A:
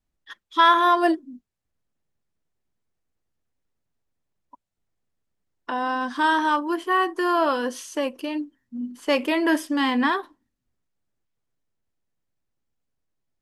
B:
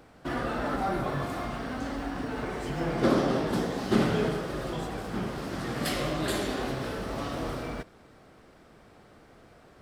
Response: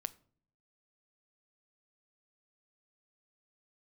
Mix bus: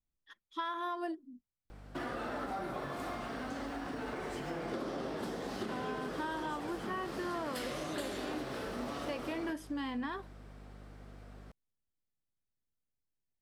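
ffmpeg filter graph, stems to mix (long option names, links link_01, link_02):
-filter_complex "[0:a]lowshelf=frequency=330:gain=6,volume=-15dB[link_01];[1:a]acompressor=threshold=-31dB:ratio=3,aeval=exprs='val(0)+0.00562*(sin(2*PI*50*n/s)+sin(2*PI*2*50*n/s)/2+sin(2*PI*3*50*n/s)/3+sin(2*PI*4*50*n/s)/4+sin(2*PI*5*50*n/s)/5)':channel_layout=same,acrossover=split=220[link_02][link_03];[link_02]acompressor=threshold=-47dB:ratio=4[link_04];[link_04][link_03]amix=inputs=2:normalize=0,adelay=1700,volume=-3dB[link_05];[link_01][link_05]amix=inputs=2:normalize=0,acompressor=threshold=-34dB:ratio=6"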